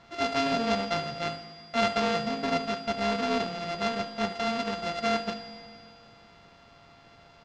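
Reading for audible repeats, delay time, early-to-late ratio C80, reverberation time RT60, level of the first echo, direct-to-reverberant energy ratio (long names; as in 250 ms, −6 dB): 1, 74 ms, 12.0 dB, 2.4 s, −16.5 dB, 9.5 dB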